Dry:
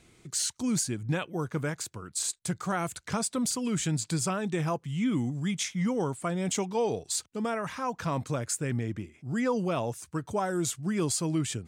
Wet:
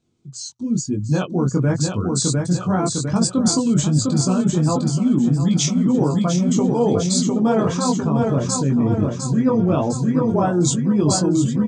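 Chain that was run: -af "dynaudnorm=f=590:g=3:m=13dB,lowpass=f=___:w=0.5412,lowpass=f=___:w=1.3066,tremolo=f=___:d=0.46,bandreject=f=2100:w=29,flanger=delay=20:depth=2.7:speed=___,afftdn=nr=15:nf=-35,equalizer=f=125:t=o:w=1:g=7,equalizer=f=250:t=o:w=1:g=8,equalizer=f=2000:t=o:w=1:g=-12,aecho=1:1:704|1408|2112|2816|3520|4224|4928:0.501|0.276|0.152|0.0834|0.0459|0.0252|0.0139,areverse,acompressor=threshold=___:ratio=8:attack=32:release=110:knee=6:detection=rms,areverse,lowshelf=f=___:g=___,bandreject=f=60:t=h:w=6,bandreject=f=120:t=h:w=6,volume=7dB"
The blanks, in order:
7300, 7300, 0.55, 1, -20dB, 450, -3.5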